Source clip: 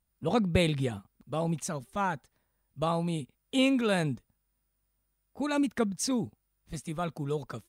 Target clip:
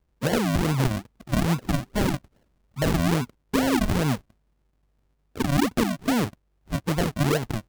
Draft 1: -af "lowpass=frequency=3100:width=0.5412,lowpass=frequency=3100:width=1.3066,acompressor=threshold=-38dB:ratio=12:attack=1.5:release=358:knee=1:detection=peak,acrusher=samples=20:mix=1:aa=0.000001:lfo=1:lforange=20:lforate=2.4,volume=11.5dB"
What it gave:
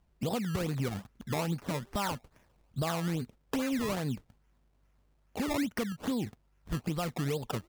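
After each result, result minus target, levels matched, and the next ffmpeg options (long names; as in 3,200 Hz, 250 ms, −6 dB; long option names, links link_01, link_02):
downward compressor: peak gain reduction +9.5 dB; sample-and-hold swept by an LFO: distortion −12 dB
-af "lowpass=frequency=3100:width=0.5412,lowpass=frequency=3100:width=1.3066,acompressor=threshold=-27.5dB:ratio=12:attack=1.5:release=358:knee=1:detection=peak,acrusher=samples=20:mix=1:aa=0.000001:lfo=1:lforange=20:lforate=2.4,volume=11.5dB"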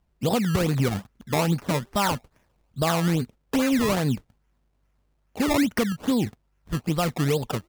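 sample-and-hold swept by an LFO: distortion −12 dB
-af "lowpass=frequency=3100:width=0.5412,lowpass=frequency=3100:width=1.3066,acompressor=threshold=-27.5dB:ratio=12:attack=1.5:release=358:knee=1:detection=peak,acrusher=samples=70:mix=1:aa=0.000001:lfo=1:lforange=70:lforate=2.4,volume=11.5dB"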